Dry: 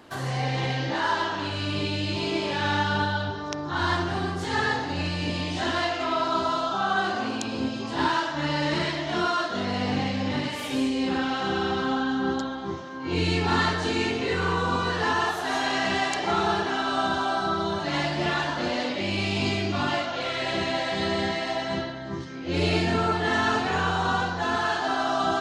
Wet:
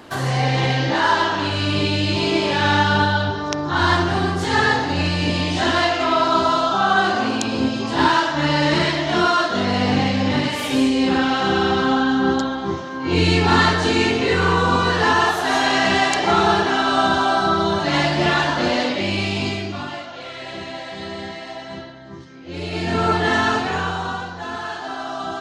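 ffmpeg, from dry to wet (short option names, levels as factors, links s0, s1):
-af "volume=9.44,afade=t=out:st=18.73:d=1.17:silence=0.237137,afade=t=in:st=22.71:d=0.43:silence=0.266073,afade=t=out:st=23.14:d=1.07:silence=0.316228"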